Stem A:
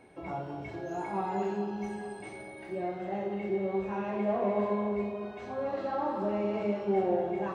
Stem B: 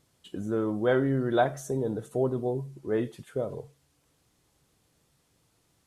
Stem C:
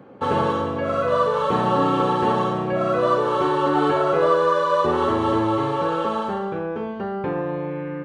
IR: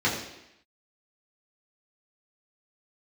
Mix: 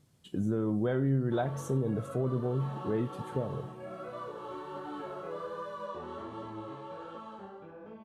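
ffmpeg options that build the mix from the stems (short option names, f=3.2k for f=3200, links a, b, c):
-filter_complex "[0:a]acrossover=split=180[a][b];[b]acompressor=threshold=-44dB:ratio=6[c];[a][c]amix=inputs=2:normalize=0,adelay=1600,volume=-17dB[d];[1:a]equalizer=f=140:t=o:w=1.9:g=10.5,volume=-3.5dB[e];[2:a]flanger=delay=17:depth=6.8:speed=1.3,adelay=1100,volume=-18.5dB[f];[d][e][f]amix=inputs=3:normalize=0,alimiter=limit=-21dB:level=0:latency=1:release=287"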